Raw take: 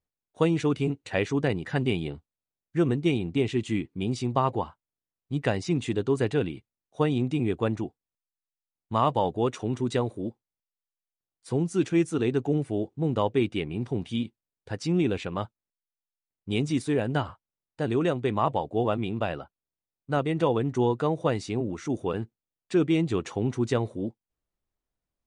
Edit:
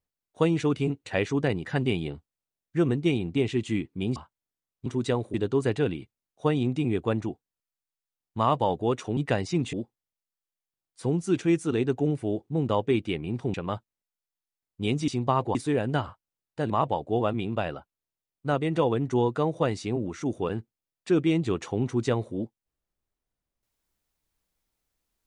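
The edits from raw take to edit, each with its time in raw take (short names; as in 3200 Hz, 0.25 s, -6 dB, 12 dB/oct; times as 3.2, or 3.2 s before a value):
4.16–4.63 move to 16.76
5.33–5.89 swap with 9.72–10.2
14.01–15.22 cut
17.91–18.34 cut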